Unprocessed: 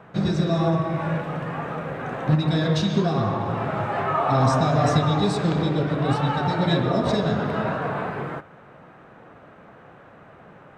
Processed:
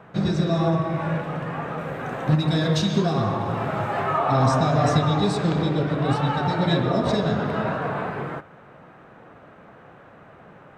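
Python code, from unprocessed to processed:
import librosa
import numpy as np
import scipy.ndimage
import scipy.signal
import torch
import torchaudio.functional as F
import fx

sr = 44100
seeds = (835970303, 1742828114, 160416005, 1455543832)

y = fx.high_shelf(x, sr, hz=7300.0, db=9.5, at=(1.79, 4.18))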